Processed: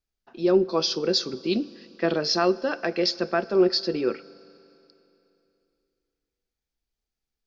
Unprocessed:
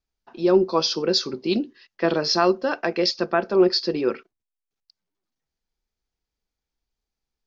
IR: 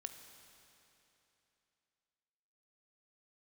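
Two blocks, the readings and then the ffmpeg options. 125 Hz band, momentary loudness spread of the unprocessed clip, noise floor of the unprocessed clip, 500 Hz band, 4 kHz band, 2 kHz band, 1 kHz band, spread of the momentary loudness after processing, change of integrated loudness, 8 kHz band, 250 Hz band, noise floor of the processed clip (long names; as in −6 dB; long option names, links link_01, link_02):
−2.0 dB, 7 LU, below −85 dBFS, −2.5 dB, −2.0 dB, −2.5 dB, −4.5 dB, 7 LU, −2.5 dB, can't be measured, −2.0 dB, below −85 dBFS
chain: -filter_complex "[0:a]equalizer=frequency=960:width=3.3:gain=-6,asplit=2[link_01][link_02];[1:a]atrim=start_sample=2205[link_03];[link_02][link_03]afir=irnorm=-1:irlink=0,volume=-5.5dB[link_04];[link_01][link_04]amix=inputs=2:normalize=0,volume=-4.5dB"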